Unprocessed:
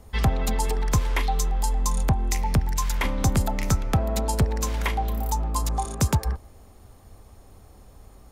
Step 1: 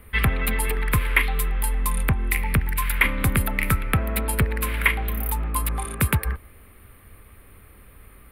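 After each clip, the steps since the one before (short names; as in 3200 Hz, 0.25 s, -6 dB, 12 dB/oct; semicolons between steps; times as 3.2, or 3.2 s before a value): EQ curve 490 Hz 0 dB, 780 Hz -8 dB, 1200 Hz +6 dB, 2300 Hz +13 dB, 4200 Hz -3 dB, 6300 Hz -20 dB, 10000 Hz +10 dB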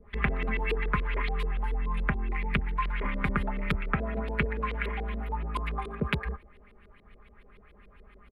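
comb 4.9 ms, depth 70%; LFO low-pass saw up 7 Hz 360–4100 Hz; gain -8.5 dB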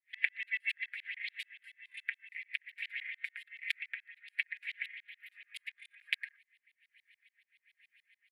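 steep high-pass 1800 Hz 72 dB/oct; rotary speaker horn 7 Hz, later 1.2 Hz, at 0.58; gain +1 dB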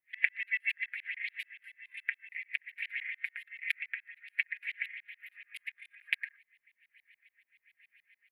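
band shelf 5400 Hz -9.5 dB; gain +3.5 dB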